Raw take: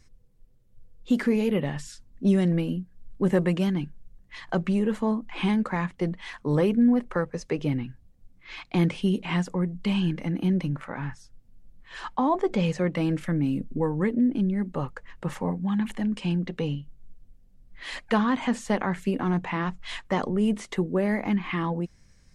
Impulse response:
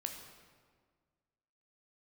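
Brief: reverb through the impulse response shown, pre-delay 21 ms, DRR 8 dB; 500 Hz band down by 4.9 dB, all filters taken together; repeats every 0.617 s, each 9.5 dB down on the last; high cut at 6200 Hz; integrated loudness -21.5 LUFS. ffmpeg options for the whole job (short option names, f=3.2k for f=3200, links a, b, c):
-filter_complex "[0:a]lowpass=6.2k,equalizer=f=500:t=o:g=-6.5,aecho=1:1:617|1234|1851|2468:0.335|0.111|0.0365|0.012,asplit=2[a][b];[1:a]atrim=start_sample=2205,adelay=21[c];[b][c]afir=irnorm=-1:irlink=0,volume=-7dB[d];[a][d]amix=inputs=2:normalize=0,volume=5.5dB"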